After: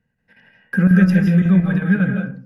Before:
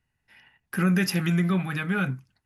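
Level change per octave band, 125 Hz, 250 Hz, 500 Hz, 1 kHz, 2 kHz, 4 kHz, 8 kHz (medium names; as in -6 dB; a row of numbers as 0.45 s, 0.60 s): +10.0 dB, +11.0 dB, +5.0 dB, -1.5 dB, +5.5 dB, no reading, under -10 dB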